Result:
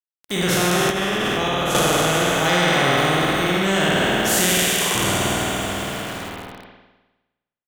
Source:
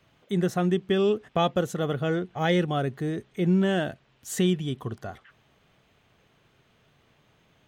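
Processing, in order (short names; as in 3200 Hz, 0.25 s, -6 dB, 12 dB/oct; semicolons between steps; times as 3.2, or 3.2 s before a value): spectral trails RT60 2.92 s; 4.52–4.95 inverse Chebyshev high-pass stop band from 260 Hz; on a send: feedback echo 0.24 s, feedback 58%, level -14.5 dB; on the sum: sample gate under -46.5 dBFS; spring tank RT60 1.1 s, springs 51 ms, chirp 70 ms, DRR -4 dB; in parallel at +2 dB: limiter -11 dBFS, peak gain reduction 7.5 dB; 0.9–1.75 on the sum: level quantiser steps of 17 dB; spectral compressor 2:1; gain -1.5 dB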